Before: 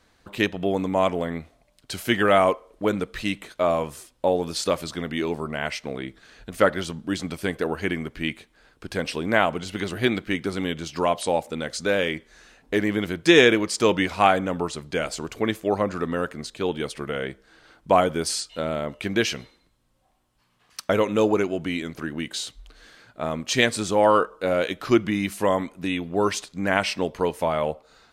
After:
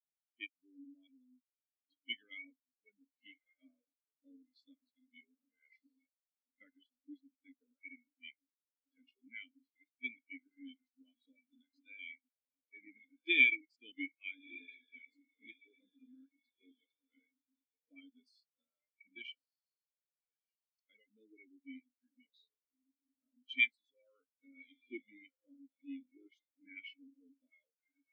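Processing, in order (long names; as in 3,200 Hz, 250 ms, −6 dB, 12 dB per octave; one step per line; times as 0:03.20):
formant filter i
spectral tilt +4.5 dB per octave
on a send: feedback delay with all-pass diffusion 1,272 ms, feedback 67%, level −7 dB
on the sum: noise reduction from a noise print of the clip's start 15 dB
every bin expanded away from the loudest bin 2.5 to 1
level −6 dB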